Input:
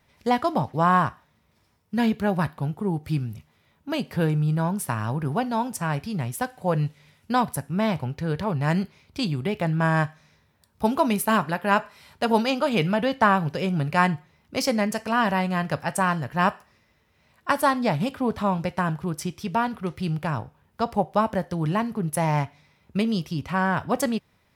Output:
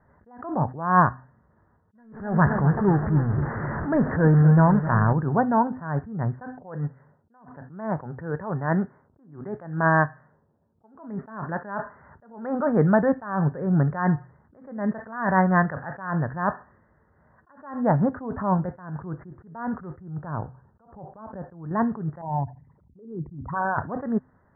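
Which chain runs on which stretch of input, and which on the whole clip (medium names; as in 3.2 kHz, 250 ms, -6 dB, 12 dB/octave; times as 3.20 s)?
1.95–5.13 s: jump at every zero crossing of -28 dBFS + resonant low-pass 3.6 kHz, resonance Q 2.1 + modulated delay 258 ms, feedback 50%, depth 87 cents, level -12.5 dB
6.58–10.95 s: level-controlled noise filter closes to 440 Hz, open at -21 dBFS + high-pass 250 Hz 6 dB/octave
14.98–16.11 s: treble shelf 2.1 kHz +11 dB + upward compressor, threshold -37 dBFS
20.02–21.71 s: high-order bell 4.7 kHz -10.5 dB 2.8 oct + compression 8:1, threshold -27 dBFS
22.21–23.78 s: resonances exaggerated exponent 3 + band-stop 2.1 kHz, Q 5.8 + compression, threshold -25 dBFS
whole clip: steep low-pass 1.8 kHz 96 dB/octave; de-hum 127.9 Hz, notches 2; attacks held to a fixed rise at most 100 dB/s; trim +5 dB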